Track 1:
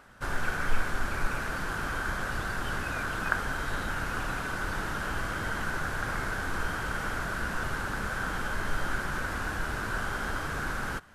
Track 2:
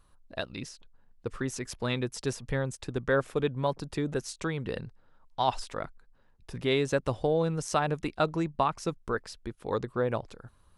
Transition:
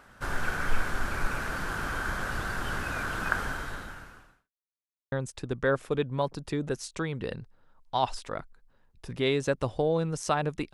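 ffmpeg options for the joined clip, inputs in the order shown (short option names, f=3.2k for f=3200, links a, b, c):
-filter_complex "[0:a]apad=whole_dur=10.73,atrim=end=10.73,asplit=2[a][b];[a]atrim=end=4.51,asetpts=PTS-STARTPTS,afade=t=out:st=3.44:d=1.07:c=qua[c];[b]atrim=start=4.51:end=5.12,asetpts=PTS-STARTPTS,volume=0[d];[1:a]atrim=start=2.57:end=8.18,asetpts=PTS-STARTPTS,afade=t=in:d=0.004:c=hsin[e];[c][d][e]concat=n=3:v=0:a=1"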